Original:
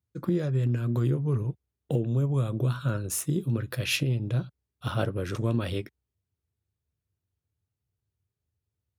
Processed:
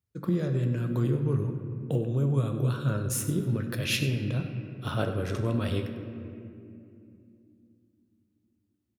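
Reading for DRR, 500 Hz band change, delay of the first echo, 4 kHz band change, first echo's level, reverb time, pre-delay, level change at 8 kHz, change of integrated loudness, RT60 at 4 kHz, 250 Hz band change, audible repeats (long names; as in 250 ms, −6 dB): 5.5 dB, +0.5 dB, 98 ms, 0.0 dB, −14.0 dB, 2.7 s, 4 ms, −0.5 dB, −0.5 dB, 1.5 s, +0.5 dB, 1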